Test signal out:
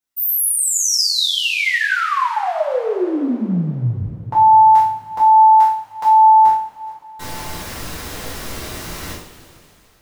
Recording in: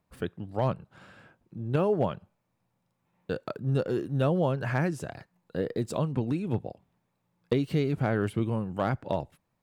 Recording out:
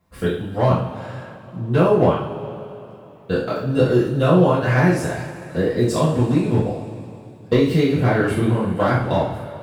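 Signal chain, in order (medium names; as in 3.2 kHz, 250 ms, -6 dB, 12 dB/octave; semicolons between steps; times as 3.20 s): spectral sustain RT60 0.35 s; two-slope reverb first 0.37 s, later 3.2 s, from -18 dB, DRR -8 dB; trim +2 dB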